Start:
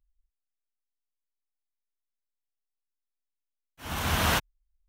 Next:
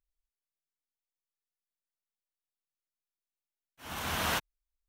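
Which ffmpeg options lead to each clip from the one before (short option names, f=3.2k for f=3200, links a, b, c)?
-af "lowshelf=f=140:g=-9.5,volume=-5dB"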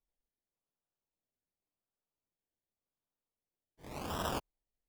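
-af "acrusher=samples=28:mix=1:aa=0.000001:lfo=1:lforange=16.8:lforate=0.89,volume=-5dB"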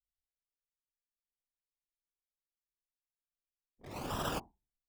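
-af "bandreject=f=94.42:t=h:w=4,bandreject=f=188.84:t=h:w=4,bandreject=f=283.26:t=h:w=4,bandreject=f=377.68:t=h:w=4,bandreject=f=472.1:t=h:w=4,bandreject=f=566.52:t=h:w=4,bandreject=f=660.94:t=h:w=4,bandreject=f=755.36:t=h:w=4,bandreject=f=849.78:t=h:w=4,bandreject=f=944.2:t=h:w=4,bandreject=f=1.03862k:t=h:w=4,afftfilt=real='hypot(re,im)*cos(2*PI*random(0))':imag='hypot(re,im)*sin(2*PI*random(1))':win_size=512:overlap=0.75,anlmdn=0.0000398,volume=6.5dB"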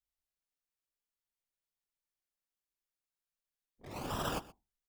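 -af "aecho=1:1:124:0.1"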